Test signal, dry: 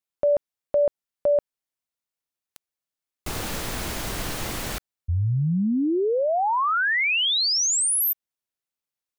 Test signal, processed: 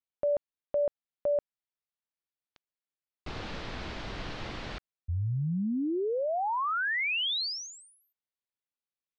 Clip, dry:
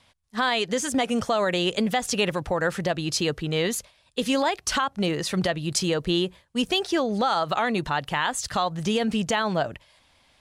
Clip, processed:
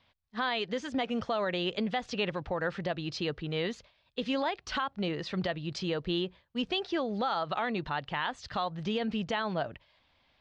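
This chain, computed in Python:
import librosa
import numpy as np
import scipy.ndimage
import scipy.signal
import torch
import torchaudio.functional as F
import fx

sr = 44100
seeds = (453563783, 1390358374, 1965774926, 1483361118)

y = scipy.signal.sosfilt(scipy.signal.butter(4, 4500.0, 'lowpass', fs=sr, output='sos'), x)
y = y * librosa.db_to_amplitude(-7.5)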